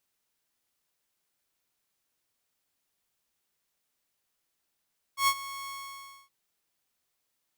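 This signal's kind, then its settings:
note with an ADSR envelope saw 1,100 Hz, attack 106 ms, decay 61 ms, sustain −17 dB, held 0.51 s, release 611 ms −17.5 dBFS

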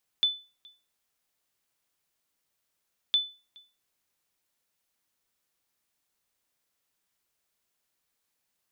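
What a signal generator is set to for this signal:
ping with an echo 3,500 Hz, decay 0.32 s, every 2.91 s, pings 2, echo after 0.42 s, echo −28 dB −16.5 dBFS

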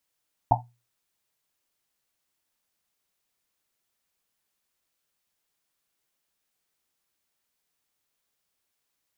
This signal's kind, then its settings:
drum after Risset, pitch 120 Hz, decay 0.32 s, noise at 810 Hz, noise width 230 Hz, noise 65%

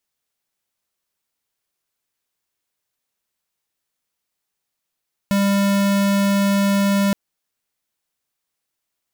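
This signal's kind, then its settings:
tone square 199 Hz −17 dBFS 1.82 s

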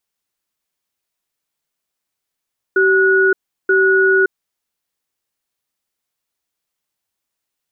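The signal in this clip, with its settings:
tone pair in a cadence 383 Hz, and 1,460 Hz, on 0.57 s, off 0.36 s, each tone −12.5 dBFS 1.78 s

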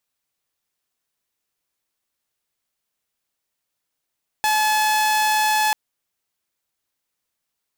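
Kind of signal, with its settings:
tone saw 858 Hz −14 dBFS 1.29 s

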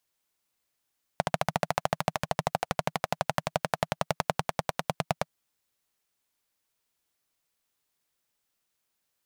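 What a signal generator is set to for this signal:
pulse-train model of a single-cylinder engine, changing speed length 4.08 s, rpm 1,700, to 1,100, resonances 160/660 Hz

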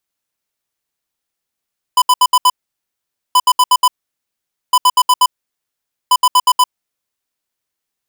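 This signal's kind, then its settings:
beeps in groups square 1,000 Hz, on 0.05 s, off 0.07 s, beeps 5, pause 0.85 s, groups 4, −9 dBFS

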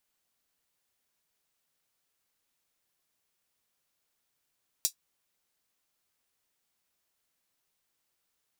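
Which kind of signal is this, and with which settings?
closed synth hi-hat, high-pass 5,100 Hz, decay 0.10 s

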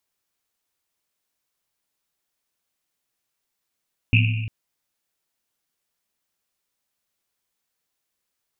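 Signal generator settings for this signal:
drum after Risset length 0.35 s, pitch 110 Hz, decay 1.65 s, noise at 2,600 Hz, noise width 450 Hz, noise 30%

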